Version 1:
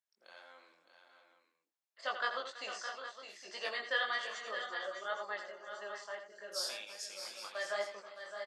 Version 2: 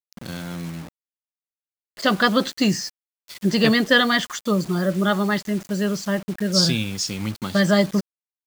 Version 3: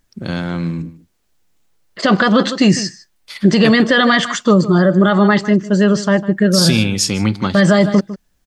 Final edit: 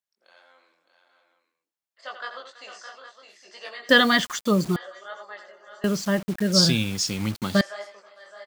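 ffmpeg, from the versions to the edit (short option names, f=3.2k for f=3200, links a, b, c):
-filter_complex "[1:a]asplit=2[a][b];[0:a]asplit=3[c][d][e];[c]atrim=end=3.892[f];[a]atrim=start=3.888:end=4.762[g];[d]atrim=start=4.758:end=5.842[h];[b]atrim=start=5.838:end=7.612[i];[e]atrim=start=7.608[j];[f][g]acrossfade=d=0.004:c1=hsin:c2=hsin[k];[k][h]acrossfade=d=0.004:c1=hsin:c2=hsin[l];[l][i]acrossfade=d=0.004:c1=hsin:c2=hsin[m];[m][j]acrossfade=d=0.004:c1=hsin:c2=hsin"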